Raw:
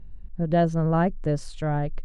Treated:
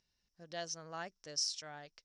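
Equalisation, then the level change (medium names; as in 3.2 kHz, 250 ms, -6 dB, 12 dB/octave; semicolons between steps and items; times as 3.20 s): band-pass filter 5.5 kHz, Q 9.4; +17.5 dB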